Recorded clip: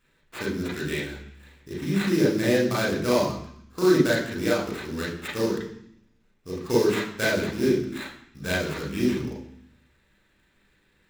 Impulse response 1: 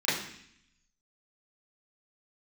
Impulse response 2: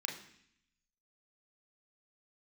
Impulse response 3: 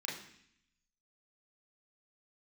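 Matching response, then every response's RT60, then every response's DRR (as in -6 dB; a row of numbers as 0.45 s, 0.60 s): 3; 0.65 s, 0.65 s, 0.65 s; -13.5 dB, 0.5 dB, -5.0 dB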